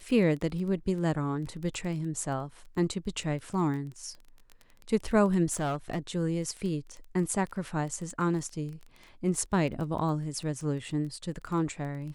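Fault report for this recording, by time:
crackle 12 per s -35 dBFS
5.52–5.99 s: clipped -26 dBFS

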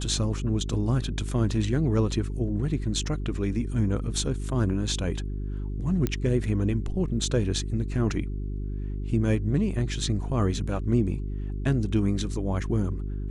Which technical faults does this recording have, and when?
hum 50 Hz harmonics 8 -31 dBFS
6.07 s: pop -13 dBFS

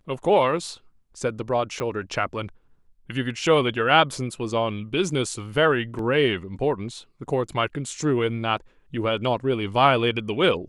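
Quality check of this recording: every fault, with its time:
1.80 s: pop -15 dBFS
5.99 s: dropout 2 ms

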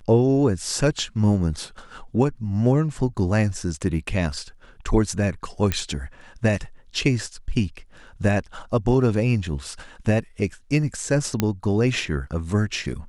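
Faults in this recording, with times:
5.72 s: pop -8 dBFS
11.40 s: pop -6 dBFS

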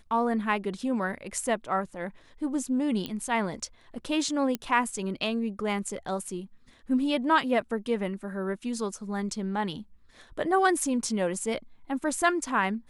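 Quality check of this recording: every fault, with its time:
3.06 s: pop -20 dBFS
4.55 s: pop -15 dBFS

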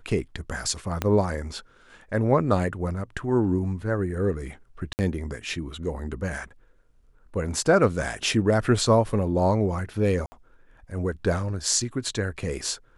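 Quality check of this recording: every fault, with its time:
1.02 s: pop -10 dBFS
4.93–4.99 s: dropout 59 ms
10.26–10.32 s: dropout 60 ms

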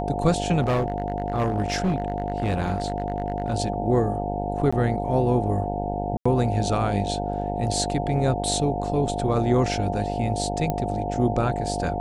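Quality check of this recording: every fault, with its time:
buzz 50 Hz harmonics 18 -29 dBFS
whine 710 Hz -29 dBFS
0.61–3.55 s: clipped -18.5 dBFS
4.71–4.72 s: dropout 15 ms
6.17–6.25 s: dropout 85 ms
10.70 s: pop -12 dBFS

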